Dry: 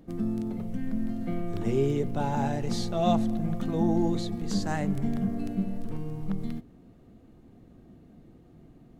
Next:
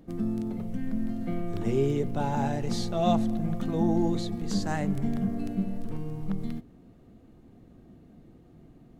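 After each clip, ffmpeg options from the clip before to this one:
ffmpeg -i in.wav -af anull out.wav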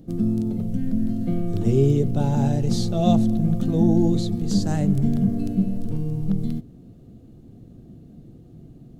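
ffmpeg -i in.wav -af "equalizer=frequency=125:width_type=o:width=1:gain=6,equalizer=frequency=1000:width_type=o:width=1:gain=-9,equalizer=frequency=2000:width_type=o:width=1:gain=-9,volume=6dB" out.wav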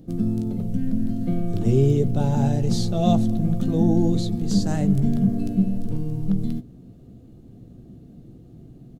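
ffmpeg -i in.wav -filter_complex "[0:a]asplit=2[link_01][link_02];[link_02]adelay=16,volume=-12.5dB[link_03];[link_01][link_03]amix=inputs=2:normalize=0" out.wav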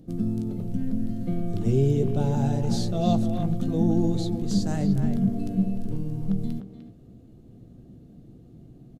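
ffmpeg -i in.wav -filter_complex "[0:a]asplit=2[link_01][link_02];[link_02]adelay=300,highpass=300,lowpass=3400,asoftclip=type=hard:threshold=-16.5dB,volume=-7dB[link_03];[link_01][link_03]amix=inputs=2:normalize=0,aresample=32000,aresample=44100,volume=-3.5dB" out.wav

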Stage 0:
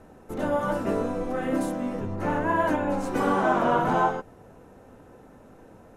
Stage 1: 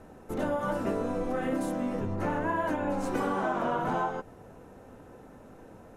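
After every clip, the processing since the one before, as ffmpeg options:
ffmpeg -i in.wav -af "acompressor=threshold=-26dB:ratio=6" out.wav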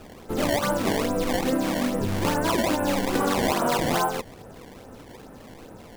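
ffmpeg -i in.wav -af "acrusher=samples=20:mix=1:aa=0.000001:lfo=1:lforange=32:lforate=2.4,volume=6dB" out.wav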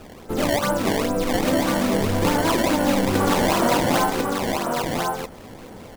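ffmpeg -i in.wav -af "aecho=1:1:1047:0.668,volume=2.5dB" out.wav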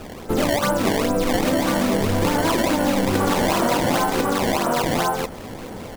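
ffmpeg -i in.wav -af "acompressor=threshold=-23dB:ratio=4,volume=6dB" out.wav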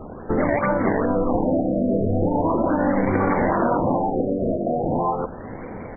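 ffmpeg -i in.wav -af "afftfilt=real='re*lt(b*sr/1024,690*pow(2400/690,0.5+0.5*sin(2*PI*0.39*pts/sr)))':imag='im*lt(b*sr/1024,690*pow(2400/690,0.5+0.5*sin(2*PI*0.39*pts/sr)))':win_size=1024:overlap=0.75" out.wav

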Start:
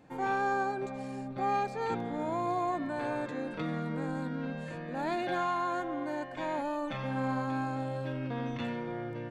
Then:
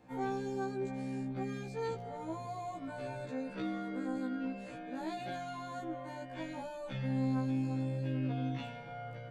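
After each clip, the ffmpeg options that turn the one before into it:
ffmpeg -i in.wav -filter_complex "[0:a]acrossover=split=440|3000[link_01][link_02][link_03];[link_02]acompressor=threshold=-42dB:ratio=6[link_04];[link_01][link_04][link_03]amix=inputs=3:normalize=0,afftfilt=real='re*1.73*eq(mod(b,3),0)':imag='im*1.73*eq(mod(b,3),0)':win_size=2048:overlap=0.75" out.wav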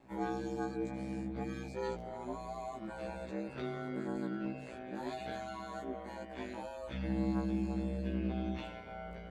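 ffmpeg -i in.wav -af "aeval=exprs='val(0)*sin(2*PI*60*n/s)':channel_layout=same,volume=2dB" out.wav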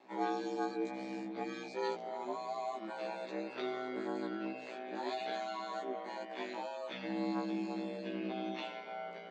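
ffmpeg -i in.wav -af "highpass=frequency=270:width=0.5412,highpass=frequency=270:width=1.3066,equalizer=frequency=280:width_type=q:width=4:gain=-7,equalizer=frequency=510:width_type=q:width=4:gain=-5,equalizer=frequency=1500:width_type=q:width=4:gain=-4,equalizer=frequency=4000:width_type=q:width=4:gain=3,lowpass=frequency=6400:width=0.5412,lowpass=frequency=6400:width=1.3066,volume=4.5dB" out.wav

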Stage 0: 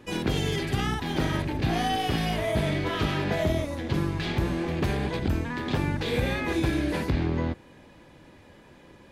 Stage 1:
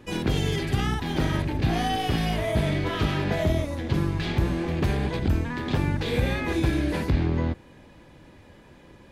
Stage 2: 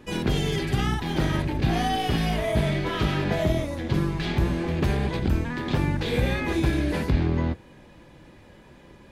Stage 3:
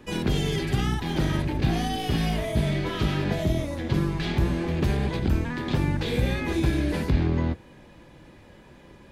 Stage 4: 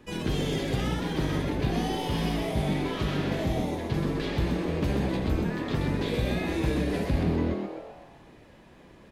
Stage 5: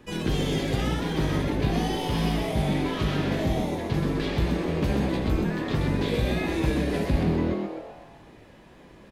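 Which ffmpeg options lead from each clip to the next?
ffmpeg -i in.wav -af "lowshelf=frequency=130:gain=5.5" out.wav
ffmpeg -i in.wav -af "flanger=delay=4.6:depth=1.3:regen=-73:speed=0.43:shape=triangular,volume=5dB" out.wav
ffmpeg -i in.wav -filter_complex "[0:a]acrossover=split=420|3000[link_01][link_02][link_03];[link_02]acompressor=threshold=-32dB:ratio=6[link_04];[link_01][link_04][link_03]amix=inputs=3:normalize=0" out.wav
ffmpeg -i in.wav -filter_complex "[0:a]asplit=7[link_01][link_02][link_03][link_04][link_05][link_06][link_07];[link_02]adelay=128,afreqshift=120,volume=-4.5dB[link_08];[link_03]adelay=256,afreqshift=240,volume=-10.5dB[link_09];[link_04]adelay=384,afreqshift=360,volume=-16.5dB[link_10];[link_05]adelay=512,afreqshift=480,volume=-22.6dB[link_11];[link_06]adelay=640,afreqshift=600,volume=-28.6dB[link_12];[link_07]adelay=768,afreqshift=720,volume=-34.6dB[link_13];[link_01][link_08][link_09][link_10][link_11][link_12][link_13]amix=inputs=7:normalize=0,volume=-4.5dB" out.wav
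ffmpeg -i in.wav -filter_complex "[0:a]asplit=2[link_01][link_02];[link_02]adelay=19,volume=-11.5dB[link_03];[link_01][link_03]amix=inputs=2:normalize=0,volume=2dB" out.wav

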